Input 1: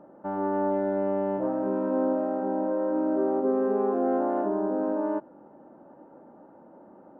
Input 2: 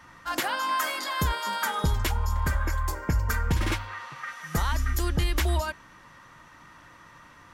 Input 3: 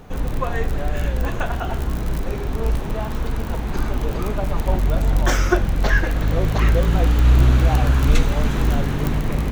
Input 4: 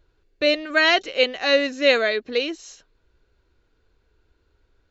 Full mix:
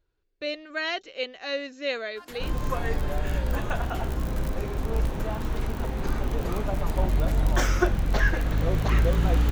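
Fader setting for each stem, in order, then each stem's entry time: -17.5 dB, -17.0 dB, -5.0 dB, -12.0 dB; 2.35 s, 1.90 s, 2.30 s, 0.00 s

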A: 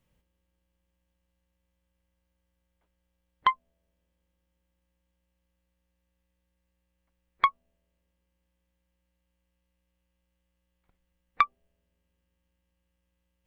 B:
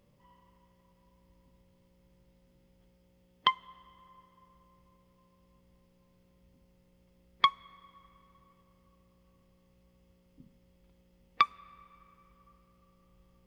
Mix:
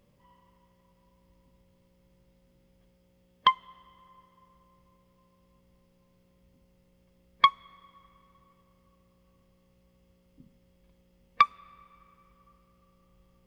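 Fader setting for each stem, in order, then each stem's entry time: -4.5 dB, +1.0 dB; 0.00 s, 0.00 s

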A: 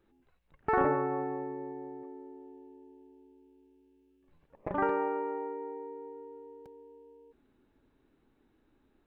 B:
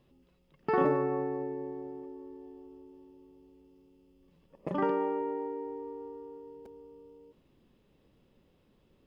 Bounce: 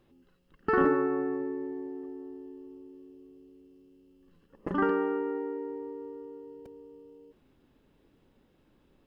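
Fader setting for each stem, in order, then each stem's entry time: +0.5 dB, -1.0 dB; 0.00 s, 0.00 s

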